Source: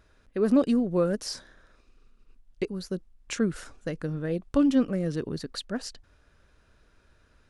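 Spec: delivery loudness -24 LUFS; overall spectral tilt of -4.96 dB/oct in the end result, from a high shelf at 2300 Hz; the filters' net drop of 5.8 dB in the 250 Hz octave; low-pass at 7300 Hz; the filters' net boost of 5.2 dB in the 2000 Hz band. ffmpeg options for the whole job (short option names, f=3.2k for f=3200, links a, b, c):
-af "lowpass=7.3k,equalizer=f=250:t=o:g=-7,equalizer=f=2k:t=o:g=8.5,highshelf=f=2.3k:g=-3,volume=8dB"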